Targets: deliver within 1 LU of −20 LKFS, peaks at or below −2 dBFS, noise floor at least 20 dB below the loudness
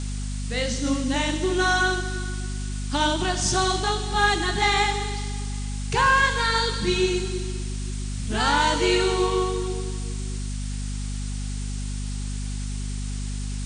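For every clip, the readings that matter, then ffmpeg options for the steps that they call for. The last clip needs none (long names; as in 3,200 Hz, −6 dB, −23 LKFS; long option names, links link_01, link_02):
mains hum 50 Hz; hum harmonics up to 250 Hz; level of the hum −27 dBFS; background noise floor −29 dBFS; target noise floor −45 dBFS; integrated loudness −24.5 LKFS; sample peak −7.5 dBFS; target loudness −20.0 LKFS
→ -af "bandreject=frequency=50:width_type=h:width=6,bandreject=frequency=100:width_type=h:width=6,bandreject=frequency=150:width_type=h:width=6,bandreject=frequency=200:width_type=h:width=6,bandreject=frequency=250:width_type=h:width=6"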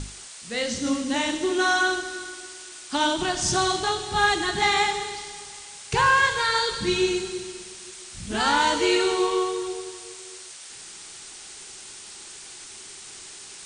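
mains hum none found; background noise floor −42 dBFS; target noise floor −44 dBFS
→ -af "afftdn=noise_reduction=6:noise_floor=-42"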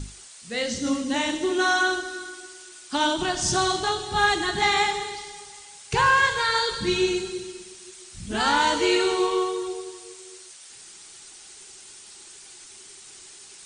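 background noise floor −46 dBFS; integrated loudness −23.5 LKFS; sample peak −9.0 dBFS; target loudness −20.0 LKFS
→ -af "volume=3.5dB"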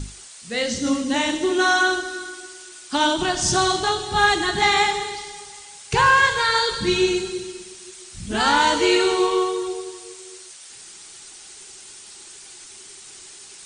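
integrated loudness −20.0 LKFS; sample peak −5.5 dBFS; background noise floor −43 dBFS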